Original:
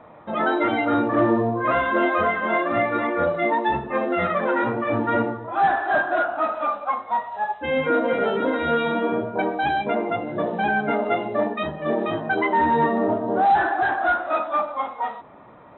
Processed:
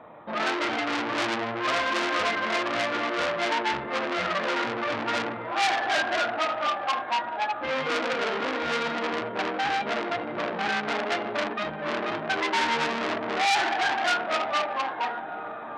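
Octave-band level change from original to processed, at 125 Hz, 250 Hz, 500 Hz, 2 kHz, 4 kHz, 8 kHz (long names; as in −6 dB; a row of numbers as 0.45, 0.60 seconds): −11.0 dB, −9.0 dB, −7.0 dB, −1.5 dB, +8.5 dB, can't be measured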